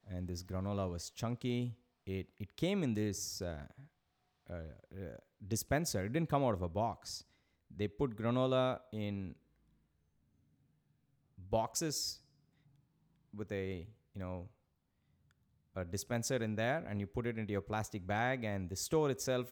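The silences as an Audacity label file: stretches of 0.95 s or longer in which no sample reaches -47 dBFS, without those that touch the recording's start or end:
9.320000	11.400000	silence
12.150000	13.340000	silence
14.470000	15.760000	silence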